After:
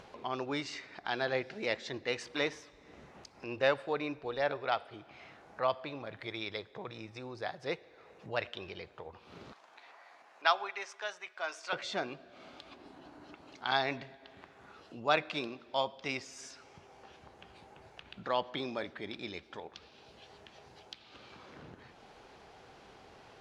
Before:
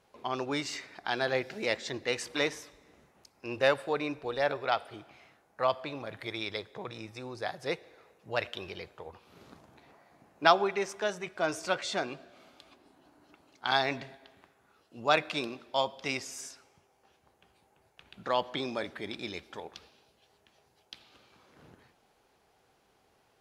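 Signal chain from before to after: low-pass 5.3 kHz 12 dB/octave; upward compressor, threshold -38 dBFS; 9.52–11.73 s: high-pass 890 Hz 12 dB/octave; trim -3 dB

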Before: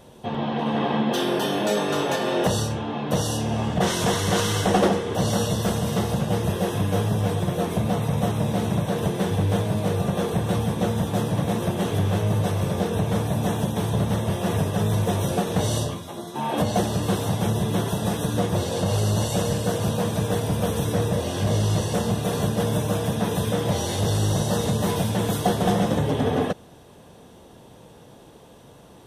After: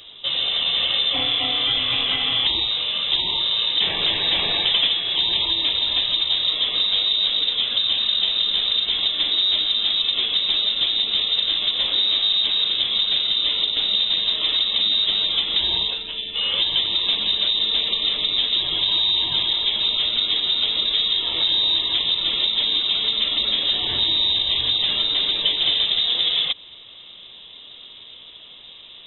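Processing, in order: compression 2:1, threshold -26 dBFS, peak gain reduction 6.5 dB; frequency inversion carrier 3.8 kHz; trim +5.5 dB

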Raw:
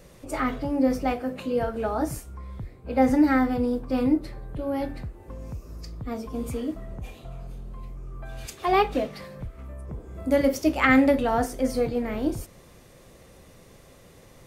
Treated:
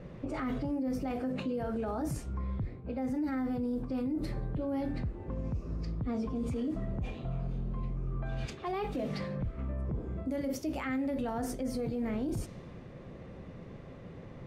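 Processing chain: level-controlled noise filter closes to 2.2 kHz, open at -22 dBFS; peaking EQ 170 Hz +8.5 dB 2.2 oct; reverse; compression 6:1, threshold -24 dBFS, peak gain reduction 14.5 dB; reverse; peak limiter -27 dBFS, peak gain reduction 11.5 dB

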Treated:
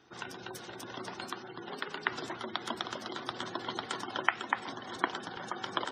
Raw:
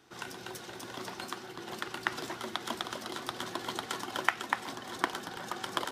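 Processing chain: spectral gate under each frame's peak -20 dB strong; 1.69–2.09 s: frequency shift +41 Hz

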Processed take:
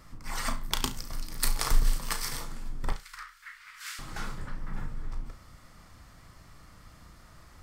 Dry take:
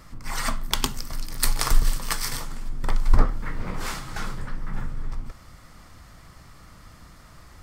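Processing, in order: 2.92–3.99 s: inverse Chebyshev high-pass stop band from 720 Hz, stop band 40 dB; flutter echo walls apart 6 m, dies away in 0.23 s; trim -5.5 dB

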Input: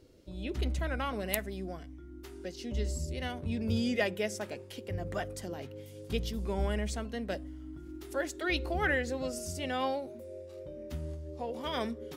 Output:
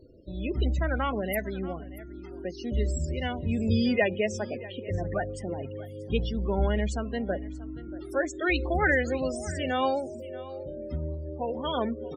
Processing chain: loudest bins only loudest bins 32; delay 633 ms -18.5 dB; trim +6 dB

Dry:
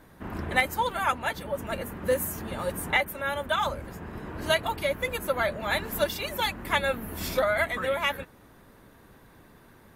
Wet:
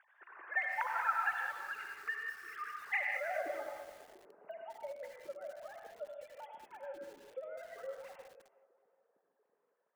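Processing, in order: formants replaced by sine waves; spectral selection erased 1.52–2.80 s, 470–1100 Hz; compression 8:1, threshold -29 dBFS, peak gain reduction 13.5 dB; de-hum 350.3 Hz, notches 4; band-pass sweep 1.6 kHz -> 200 Hz, 3.03–3.63 s; band-passed feedback delay 367 ms, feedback 44%, band-pass 850 Hz, level -18 dB; reverberation, pre-delay 62 ms, DRR 1.5 dB; bit-crushed delay 206 ms, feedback 55%, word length 9-bit, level -9 dB; trim +3 dB

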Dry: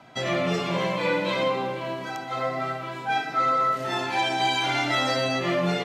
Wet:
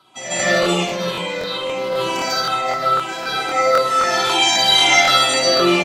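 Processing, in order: drifting ripple filter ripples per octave 0.62, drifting -2.2 Hz, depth 14 dB; tone controls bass -8 dB, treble +13 dB; early reflections 56 ms -6 dB, 69 ms -9.5 dB; 0.59–2.70 s: compressor with a negative ratio -28 dBFS, ratio -1; treble shelf 9.7 kHz -7 dB; comb 5.4 ms, depth 39%; de-hum 71.37 Hz, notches 40; reverberation RT60 0.65 s, pre-delay 140 ms, DRR -12 dB; crackling interface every 0.26 s, samples 1024, repeat, from 0.35 s; trim -6.5 dB

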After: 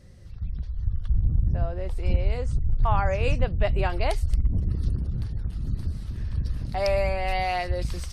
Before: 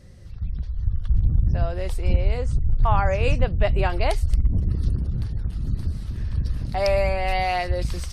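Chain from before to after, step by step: 1.09–1.96 s: treble shelf 3.1 kHz -> 2.1 kHz -12 dB; trim -3 dB

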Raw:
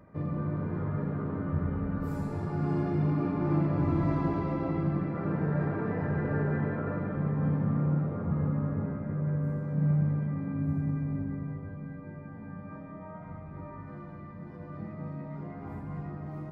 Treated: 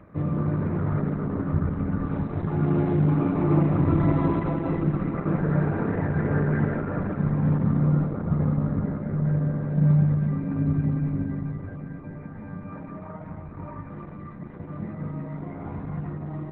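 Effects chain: trim +7 dB; Opus 8 kbps 48 kHz

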